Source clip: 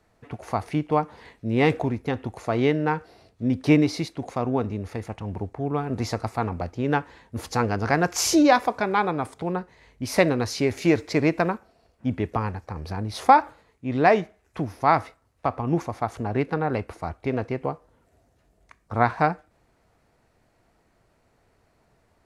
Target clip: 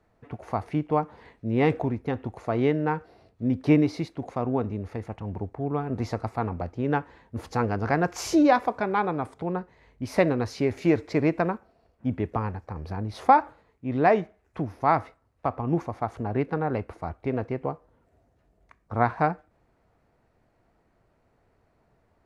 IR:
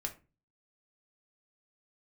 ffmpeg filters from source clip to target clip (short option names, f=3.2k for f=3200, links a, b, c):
-af "highshelf=f=3k:g=-11.5,volume=-1.5dB"